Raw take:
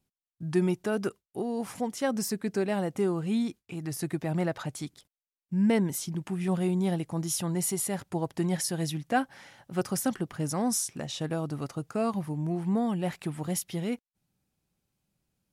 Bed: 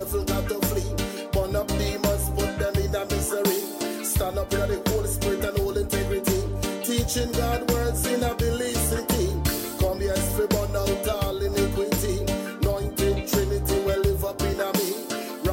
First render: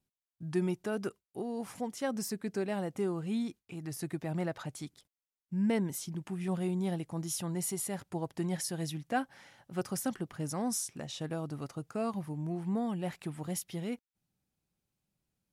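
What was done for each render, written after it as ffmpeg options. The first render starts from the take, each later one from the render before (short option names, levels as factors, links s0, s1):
-af "volume=0.531"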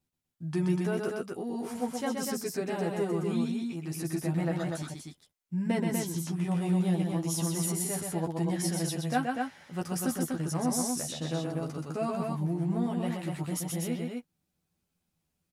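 -filter_complex "[0:a]asplit=2[s0][s1];[s1]adelay=12,volume=0.708[s2];[s0][s2]amix=inputs=2:normalize=0,aecho=1:1:127|244:0.631|0.631"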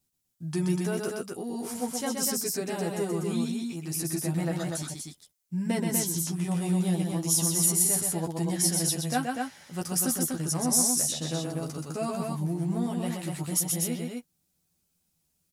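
-af "bass=f=250:g=1,treble=f=4000:g=11"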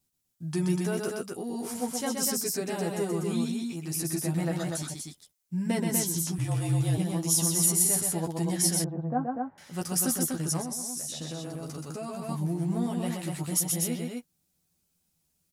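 -filter_complex "[0:a]asettb=1/sr,asplit=3[s0][s1][s2];[s0]atrim=end=6.384[s3];[s1]atrim=start=6.38:end=6.98,asetpts=PTS-STARTPTS,afade=t=in:d=0.004:c=qsin,afade=t=out:st=0.596:d=0.004:c=qsin,afreqshift=-47[s4];[s2]atrim=start=6.976[s5];[s3][s4]acrossfade=d=0.004:c1=hsin:c2=qsin[s6];[s6][s5]acrossfade=d=0.004:c1=qsin:c2=hsin,asettb=1/sr,asplit=3[s7][s8][s9];[s7]atrim=end=8.844[s10];[s8]atrim=start=8.84:end=9.58,asetpts=PTS-STARTPTS,afade=t=in:d=0.004:c=qsin,afade=t=out:st=0.736:d=0.004:c=qsin,lowpass=f=1100:w=0.5412,lowpass=f=1100:w=1.3066[s11];[s9]atrim=start=9.576[s12];[s10][s11]acrossfade=d=0.004:c1=hsin:c2=qsin[s13];[s13][s12]acrossfade=d=0.004:c1=qsin:c2=hsin,asettb=1/sr,asplit=3[s14][s15][s16];[s14]atrim=end=10.614[s17];[s15]atrim=start=10.61:end=12.29,asetpts=PTS-STARTPTS,afade=t=in:d=0.004:c=qsin,afade=t=out:st=1.676:d=0.004:c=qsin,acompressor=threshold=0.0224:ratio=4:attack=3.2:release=140:knee=1:detection=peak[s18];[s16]atrim=start=12.286[s19];[s17][s18]acrossfade=d=0.004:c1=hsin:c2=qsin[s20];[s20][s19]acrossfade=d=0.004:c1=qsin:c2=hsin"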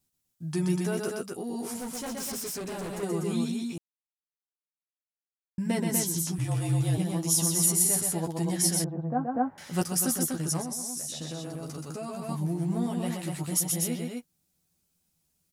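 -filter_complex "[0:a]asettb=1/sr,asplit=3[s0][s1][s2];[s0]atrim=end=1.784[s3];[s1]atrim=start=1.78:end=3.03,asetpts=PTS-STARTPTS,afade=t=in:d=0.004:c=qsin,afade=t=out:st=1.246:d=0.004:c=qsin,volume=44.7,asoftclip=hard,volume=0.0224[s4];[s2]atrim=start=3.026[s5];[s3][s4]acrossfade=d=0.004:c1=hsin:c2=qsin[s6];[s6][s5]acrossfade=d=0.004:c1=qsin:c2=hsin,asplit=3[s7][s8][s9];[s7]afade=t=out:st=9.34:d=0.02[s10];[s8]acontrast=49,afade=t=in:st=9.34:d=0.02,afade=t=out:st=9.83:d=0.02[s11];[s9]afade=t=in:st=9.83:d=0.02[s12];[s10][s11][s12]amix=inputs=3:normalize=0,asplit=3[s13][s14][s15];[s13]atrim=end=3.78,asetpts=PTS-STARTPTS,afade=t=out:st=3.776:d=0.004:c=hsin[s16];[s14]atrim=start=3.78:end=5.58,asetpts=PTS-STARTPTS,volume=0[s17];[s15]atrim=start=5.58,asetpts=PTS-STARTPTS,afade=t=in:d=0.004:c=hsin[s18];[s16][s17][s18]concat=n=3:v=0:a=1"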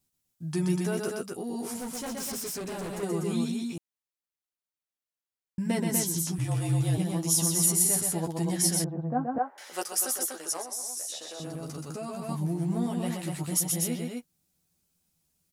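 -filter_complex "[0:a]asettb=1/sr,asplit=3[s0][s1][s2];[s0]atrim=end=9.384[s3];[s1]atrim=start=9.38:end=11.4,asetpts=PTS-STARTPTS,afade=t=in:d=0.004:c=qsin,afade=t=out:st=2.016:d=0.004:c=qsin,highpass=f=410:w=0.5412,highpass=f=410:w=1.3066[s4];[s2]atrim=start=11.396[s5];[s3][s4]acrossfade=d=0.004:c1=hsin:c2=qsin[s6];[s6][s5]acrossfade=d=0.004:c1=qsin:c2=hsin"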